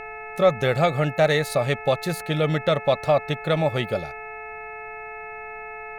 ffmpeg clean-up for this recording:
ffmpeg -i in.wav -af "bandreject=frequency=433.2:width_type=h:width=4,bandreject=frequency=866.4:width_type=h:width=4,bandreject=frequency=1299.6:width_type=h:width=4,bandreject=frequency=1732.8:width_type=h:width=4,bandreject=frequency=2166:width_type=h:width=4,bandreject=frequency=2599.2:width_type=h:width=4,bandreject=frequency=700:width=30,agate=range=-21dB:threshold=-29dB" out.wav

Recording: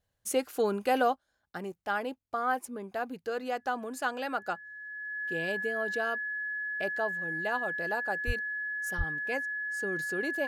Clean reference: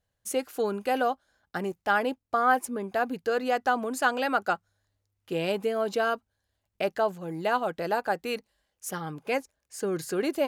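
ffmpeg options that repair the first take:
ffmpeg -i in.wav -filter_complex "[0:a]bandreject=frequency=1700:width=30,asplit=3[link_01][link_02][link_03];[link_01]afade=type=out:start_time=8.26:duration=0.02[link_04];[link_02]highpass=frequency=140:width=0.5412,highpass=frequency=140:width=1.3066,afade=type=in:start_time=8.26:duration=0.02,afade=type=out:start_time=8.38:duration=0.02[link_05];[link_03]afade=type=in:start_time=8.38:duration=0.02[link_06];[link_04][link_05][link_06]amix=inputs=3:normalize=0,asplit=3[link_07][link_08][link_09];[link_07]afade=type=out:start_time=8.97:duration=0.02[link_10];[link_08]highpass=frequency=140:width=0.5412,highpass=frequency=140:width=1.3066,afade=type=in:start_time=8.97:duration=0.02,afade=type=out:start_time=9.09:duration=0.02[link_11];[link_09]afade=type=in:start_time=9.09:duration=0.02[link_12];[link_10][link_11][link_12]amix=inputs=3:normalize=0,asetnsamples=nb_out_samples=441:pad=0,asendcmd='1.16 volume volume 7dB',volume=0dB" out.wav

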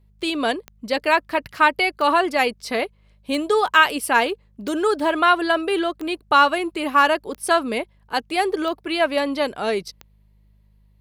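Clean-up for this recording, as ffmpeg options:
ffmpeg -i in.wav -af "adeclick=threshold=4,bandreject=frequency=51.2:width_type=h:width=4,bandreject=frequency=102.4:width_type=h:width=4,bandreject=frequency=153.6:width_type=h:width=4,bandreject=frequency=204.8:width_type=h:width=4" out.wav

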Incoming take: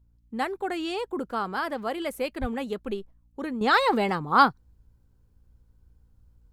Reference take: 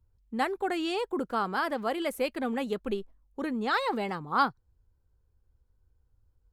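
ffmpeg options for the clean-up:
ffmpeg -i in.wav -filter_complex "[0:a]bandreject=frequency=58.3:width_type=h:width=4,bandreject=frequency=116.6:width_type=h:width=4,bandreject=frequency=174.9:width_type=h:width=4,bandreject=frequency=233.2:width_type=h:width=4,bandreject=frequency=291.5:width_type=h:width=4,asplit=3[link_01][link_02][link_03];[link_01]afade=type=out:start_time=2.4:duration=0.02[link_04];[link_02]highpass=frequency=140:width=0.5412,highpass=frequency=140:width=1.3066,afade=type=in:start_time=2.4:duration=0.02,afade=type=out:start_time=2.52:duration=0.02[link_05];[link_03]afade=type=in:start_time=2.52:duration=0.02[link_06];[link_04][link_05][link_06]amix=inputs=3:normalize=0,asetnsamples=nb_out_samples=441:pad=0,asendcmd='3.61 volume volume -7dB',volume=0dB" out.wav

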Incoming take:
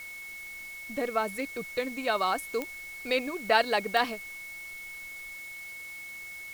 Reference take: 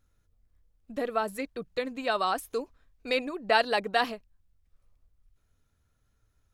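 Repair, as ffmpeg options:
ffmpeg -i in.wav -af "adeclick=threshold=4,bandreject=frequency=2200:width=30,afwtdn=0.0028" out.wav

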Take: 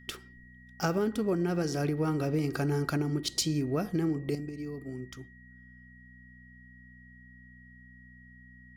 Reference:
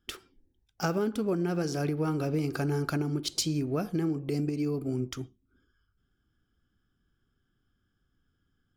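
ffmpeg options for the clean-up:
ffmpeg -i in.wav -af "bandreject=frequency=61.7:width_type=h:width=4,bandreject=frequency=123.4:width_type=h:width=4,bandreject=frequency=185.1:width_type=h:width=4,bandreject=frequency=246.8:width_type=h:width=4,bandreject=frequency=1900:width=30,asetnsamples=nb_out_samples=441:pad=0,asendcmd='4.35 volume volume 8.5dB',volume=0dB" out.wav

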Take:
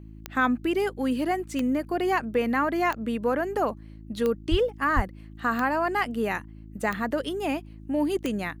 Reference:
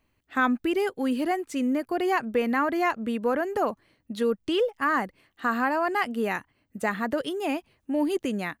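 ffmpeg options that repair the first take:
ffmpeg -i in.wav -filter_complex "[0:a]adeclick=threshold=4,bandreject=frequency=53.6:width_type=h:width=4,bandreject=frequency=107.2:width_type=h:width=4,bandreject=frequency=160.8:width_type=h:width=4,bandreject=frequency=214.4:width_type=h:width=4,bandreject=frequency=268:width_type=h:width=4,bandreject=frequency=321.6:width_type=h:width=4,asplit=3[link_01][link_02][link_03];[link_01]afade=type=out:start_time=4.5:duration=0.02[link_04];[link_02]highpass=frequency=140:width=0.5412,highpass=frequency=140:width=1.3066,afade=type=in:start_time=4.5:duration=0.02,afade=type=out:start_time=4.62:duration=0.02[link_05];[link_03]afade=type=in:start_time=4.62:duration=0.02[link_06];[link_04][link_05][link_06]amix=inputs=3:normalize=0,asplit=3[link_07][link_08][link_09];[link_07]afade=type=out:start_time=4.95:duration=0.02[link_10];[link_08]highpass=frequency=140:width=0.5412,highpass=frequency=140:width=1.3066,afade=type=in:start_time=4.95:duration=0.02,afade=type=out:start_time=5.07:duration=0.02[link_11];[link_09]afade=type=in:start_time=5.07:duration=0.02[link_12];[link_10][link_11][link_12]amix=inputs=3:normalize=0" out.wav

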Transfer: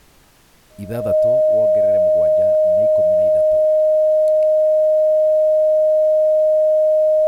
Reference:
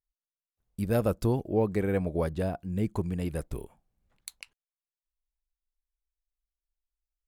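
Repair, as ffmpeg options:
ffmpeg -i in.wav -af "bandreject=frequency=620:width=30,agate=range=-21dB:threshold=-39dB,asetnsamples=nb_out_samples=441:pad=0,asendcmd='1.15 volume volume 7.5dB',volume=0dB" out.wav

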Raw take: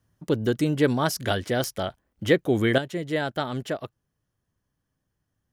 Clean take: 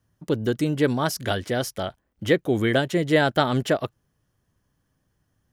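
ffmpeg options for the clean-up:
ffmpeg -i in.wav -af "adeclick=threshold=4,asetnsamples=nb_out_samples=441:pad=0,asendcmd='2.78 volume volume 7.5dB',volume=0dB" out.wav

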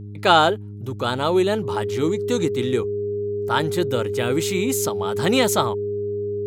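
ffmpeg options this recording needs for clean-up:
ffmpeg -i in.wav -af "bandreject=frequency=102.6:width_type=h:width=4,bandreject=frequency=205.2:width_type=h:width=4,bandreject=frequency=307.8:width_type=h:width=4,bandreject=frequency=410.4:width_type=h:width=4,bandreject=frequency=410:width=30" out.wav

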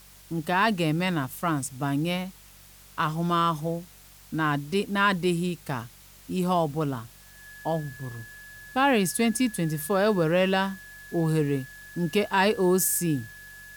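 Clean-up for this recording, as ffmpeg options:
ffmpeg -i in.wav -af "bandreject=frequency=47.5:width_type=h:width=4,bandreject=frequency=95:width_type=h:width=4,bandreject=frequency=142.5:width_type=h:width=4,bandreject=frequency=190:width_type=h:width=4,bandreject=frequency=1700:width=30,afwtdn=0.0025" out.wav

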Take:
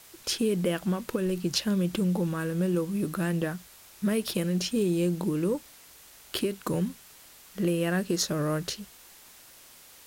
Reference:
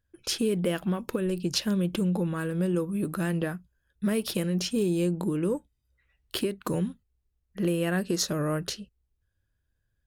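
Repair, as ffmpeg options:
ffmpeg -i in.wav -af "afwtdn=0.0028" out.wav

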